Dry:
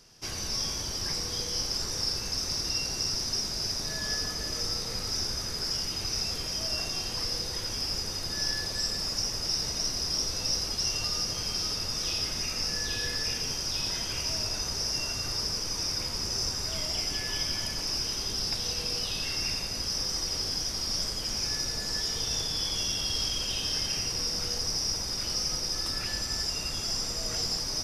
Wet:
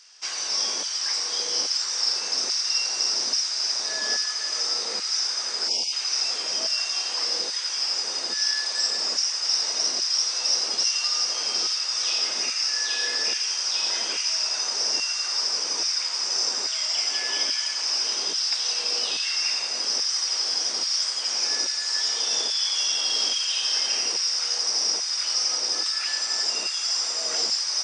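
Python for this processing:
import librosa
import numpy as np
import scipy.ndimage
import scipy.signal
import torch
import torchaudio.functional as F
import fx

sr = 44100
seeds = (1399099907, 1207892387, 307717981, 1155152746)

y = fx.brickwall_bandpass(x, sr, low_hz=170.0, high_hz=9000.0)
y = fx.spec_erase(y, sr, start_s=5.68, length_s=0.25, low_hz=1000.0, high_hz=2100.0)
y = fx.filter_lfo_highpass(y, sr, shape='saw_down', hz=1.2, low_hz=350.0, high_hz=1600.0, q=0.75)
y = y * 10.0 ** (6.5 / 20.0)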